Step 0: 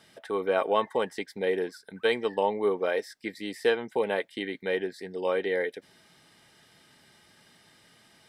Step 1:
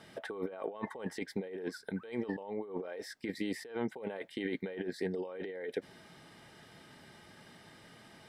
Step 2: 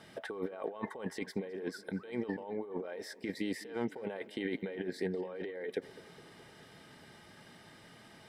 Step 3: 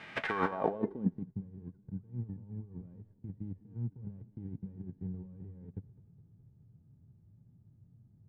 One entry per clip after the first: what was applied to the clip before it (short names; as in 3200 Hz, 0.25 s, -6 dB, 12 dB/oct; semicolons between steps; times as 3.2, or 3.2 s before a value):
high shelf 2200 Hz -9.5 dB; negative-ratio compressor -38 dBFS, ratio -1; gain -1.5 dB
tape echo 0.209 s, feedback 71%, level -18 dB, low-pass 3700 Hz
spectral whitening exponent 0.3; low-pass sweep 2200 Hz -> 110 Hz, 0.23–1.34; gain +6 dB